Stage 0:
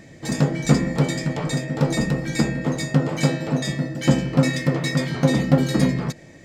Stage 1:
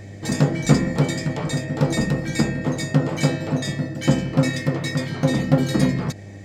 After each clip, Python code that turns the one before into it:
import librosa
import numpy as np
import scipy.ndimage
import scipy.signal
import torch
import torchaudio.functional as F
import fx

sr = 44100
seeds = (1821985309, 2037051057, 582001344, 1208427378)

y = fx.rider(x, sr, range_db=5, speed_s=2.0)
y = fx.dmg_buzz(y, sr, base_hz=100.0, harmonics=8, level_db=-38.0, tilt_db=-8, odd_only=False)
y = y * 10.0 ** (-1.0 / 20.0)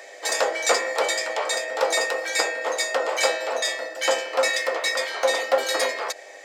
y = scipy.signal.sosfilt(scipy.signal.butter(6, 500.0, 'highpass', fs=sr, output='sos'), x)
y = y * 10.0 ** (6.0 / 20.0)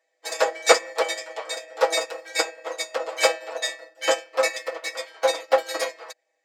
y = x + 0.73 * np.pad(x, (int(6.2 * sr / 1000.0), 0))[:len(x)]
y = fx.upward_expand(y, sr, threshold_db=-39.0, expansion=2.5)
y = y * 10.0 ** (4.5 / 20.0)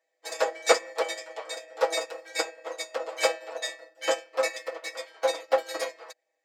y = fx.peak_eq(x, sr, hz=300.0, db=2.5, octaves=2.7)
y = y * 10.0 ** (-6.0 / 20.0)